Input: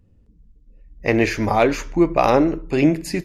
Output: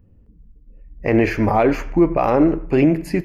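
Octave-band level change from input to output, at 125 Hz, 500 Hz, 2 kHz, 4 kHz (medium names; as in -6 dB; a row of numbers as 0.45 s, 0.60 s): +2.5 dB, +1.0 dB, -2.0 dB, -7.0 dB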